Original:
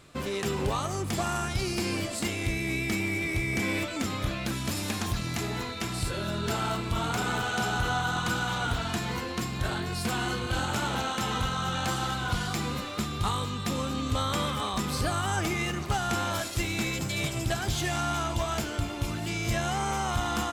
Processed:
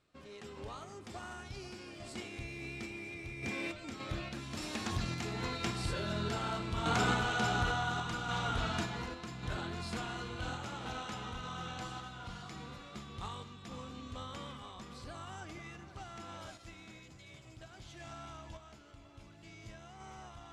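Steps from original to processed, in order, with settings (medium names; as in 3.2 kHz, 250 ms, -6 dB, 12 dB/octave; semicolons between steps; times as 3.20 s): Doppler pass-by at 6.83 s, 11 m/s, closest 15 m; low-pass 6.8 kHz 12 dB/octave; hum notches 50/100/150/200 Hz; echo whose repeats swap between lows and highs 490 ms, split 2.3 kHz, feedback 52%, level -11.5 dB; random-step tremolo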